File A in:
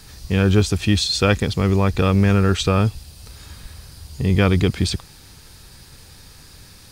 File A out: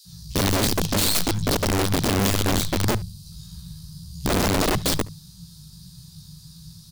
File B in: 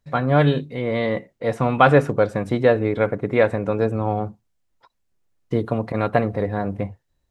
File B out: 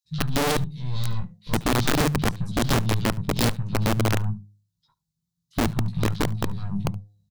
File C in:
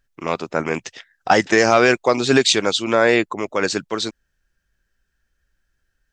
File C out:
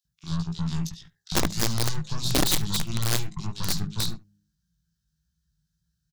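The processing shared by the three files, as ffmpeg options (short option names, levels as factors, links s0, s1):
-filter_complex "[0:a]bandreject=f=102.4:t=h:w=4,bandreject=f=204.8:t=h:w=4,bandreject=f=307.2:t=h:w=4,bandreject=f=409.6:t=h:w=4,bandreject=f=512:t=h:w=4,bandreject=f=614.4:t=h:w=4,bandreject=f=716.8:t=h:w=4,bandreject=f=819.2:t=h:w=4,alimiter=limit=0.355:level=0:latency=1:release=279,highpass=f=55:w=0.5412,highpass=f=55:w=1.3066,highshelf=f=7500:g=8,aeval=exprs='0.596*(cos(1*acos(clip(val(0)/0.596,-1,1)))-cos(1*PI/2))+0.299*(cos(3*acos(clip(val(0)/0.596,-1,1)))-cos(3*PI/2))+0.15*(cos(5*acos(clip(val(0)/0.596,-1,1)))-cos(5*PI/2))+0.075*(cos(8*acos(clip(val(0)/0.596,-1,1)))-cos(8*PI/2))':c=same,firequalizer=gain_entry='entry(110,0);entry(160,14);entry(240,-12);entry(520,-28);entry(980,-13);entry(2100,-21);entry(3800,-2);entry(8500,-8)':delay=0.05:min_phase=1,flanger=delay=17:depth=2.3:speed=1.7,acrossover=split=2300[s0][s1];[s0]adelay=50[s2];[s2][s1]amix=inputs=2:normalize=0,aeval=exprs='(mod(11.9*val(0)+1,2)-1)/11.9':c=same,asplit=2[s3][s4];[s4]aecho=0:1:72:0.075[s5];[s3][s5]amix=inputs=2:normalize=0,volume=1.88"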